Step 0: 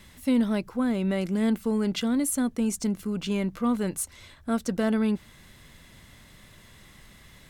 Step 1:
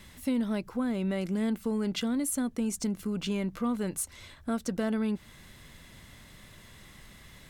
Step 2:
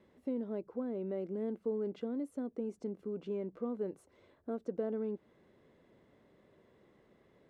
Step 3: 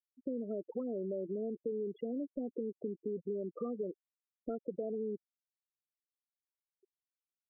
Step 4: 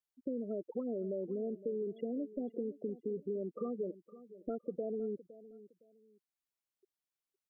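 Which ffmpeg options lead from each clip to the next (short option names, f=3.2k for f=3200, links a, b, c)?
-af "acompressor=threshold=-30dB:ratio=2"
-af "bandpass=f=430:t=q:w=2.3:csg=0"
-filter_complex "[0:a]acrossover=split=120|3000[a][b][c];[b]acompressor=threshold=-44dB:ratio=10[d];[a][d][c]amix=inputs=3:normalize=0,asplit=2[e][f];[f]highpass=f=720:p=1,volume=13dB,asoftclip=type=tanh:threshold=-35.5dB[g];[e][g]amix=inputs=2:normalize=0,lowpass=f=1.9k:p=1,volume=-6dB,afftfilt=real='re*gte(hypot(re,im),0.00891)':imag='im*gte(hypot(re,im),0.00891)':win_size=1024:overlap=0.75,volume=8.5dB"
-af "aecho=1:1:512|1024:0.141|0.0367"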